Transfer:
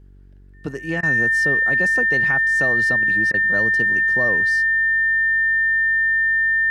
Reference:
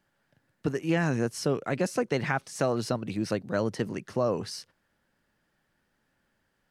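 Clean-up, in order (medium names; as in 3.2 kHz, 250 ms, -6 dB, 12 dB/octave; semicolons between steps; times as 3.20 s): de-hum 47.4 Hz, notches 9; band-stop 1.8 kHz, Q 30; interpolate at 1.01/3.32 s, 18 ms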